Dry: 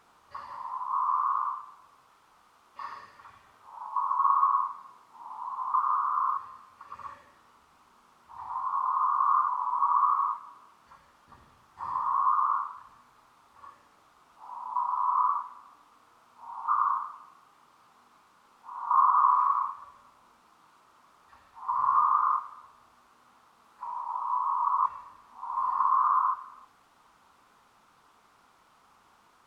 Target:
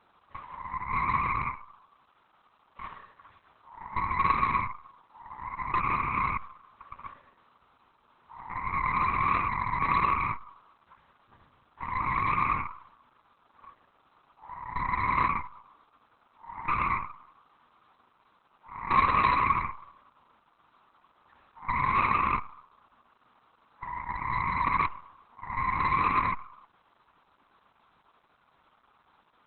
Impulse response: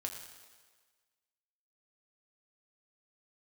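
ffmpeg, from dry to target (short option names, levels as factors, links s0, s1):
-af "aeval=exprs='0.266*(cos(1*acos(clip(val(0)/0.266,-1,1)))-cos(1*PI/2))+0.0168*(cos(3*acos(clip(val(0)/0.266,-1,1)))-cos(3*PI/2))+0.00944*(cos(5*acos(clip(val(0)/0.266,-1,1)))-cos(5*PI/2))+0.075*(cos(6*acos(clip(val(0)/0.266,-1,1)))-cos(6*PI/2))+0.0944*(cos(8*acos(clip(val(0)/0.266,-1,1)))-cos(8*PI/2))':c=same" -ar 48000 -c:a libopus -b:a 8k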